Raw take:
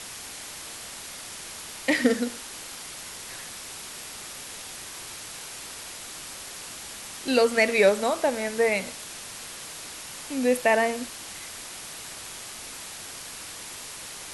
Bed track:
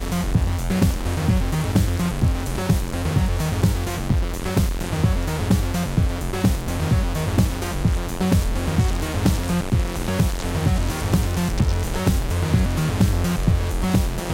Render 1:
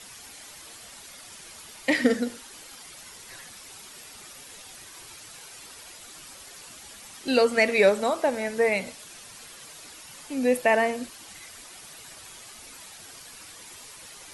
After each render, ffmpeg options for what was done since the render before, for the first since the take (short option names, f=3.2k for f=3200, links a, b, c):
-af "afftdn=nr=9:nf=-40"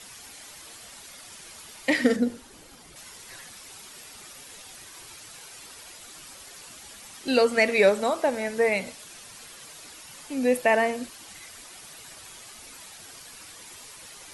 -filter_complex "[0:a]asettb=1/sr,asplit=3[a][b][c];[a]atrim=end=2.164[d];[b]atrim=start=2.16:end=2.96,asetpts=PTS-STARTPTS,afade=t=in:d=0.004:c=qsin,afade=t=out:st=0.796:d=0.004:c=qsin,tiltshelf=f=650:g=6.5[e];[c]atrim=start=2.956[f];[d][e]acrossfade=d=0.004:c1=hsin:c2=qsin[g];[g][f]acrossfade=d=0.004:c1=qsin:c2=hsin"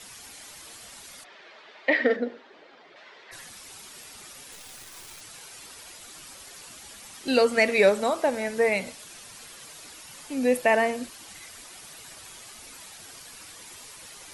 -filter_complex "[0:a]asplit=3[a][b][c];[a]afade=t=out:st=1.23:d=0.02[d];[b]highpass=380,equalizer=f=400:t=q:w=4:g=5,equalizer=f=620:t=q:w=4:g=6,equalizer=f=1.8k:t=q:w=4:g=4,equalizer=f=2.9k:t=q:w=4:g=-3,lowpass=f=3.6k:w=0.5412,lowpass=f=3.6k:w=1.3066,afade=t=in:st=1.23:d=0.02,afade=t=out:st=3.31:d=0.02[e];[c]afade=t=in:st=3.31:d=0.02[f];[d][e][f]amix=inputs=3:normalize=0,asettb=1/sr,asplit=3[g][h][i];[g]atrim=end=4.524[j];[h]atrim=start=4.52:end=5.21,asetpts=PTS-STARTPTS,afade=t=in:d=0.004:c=qsin,afade=t=out:st=0.686:d=0.004:c=qsin,acrusher=bits=8:dc=4:mix=0:aa=0.000001[k];[i]atrim=start=5.206[l];[j][k]acrossfade=d=0.004:c1=hsin:c2=qsin[m];[m][l]acrossfade=d=0.004:c1=qsin:c2=hsin"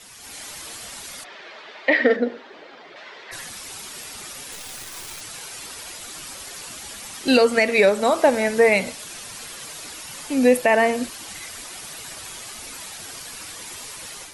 -af "alimiter=limit=-14dB:level=0:latency=1:release=352,dynaudnorm=f=180:g=3:m=8.5dB"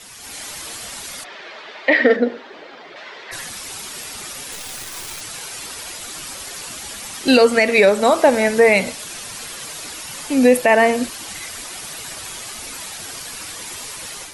-af "volume=4.5dB,alimiter=limit=-3dB:level=0:latency=1"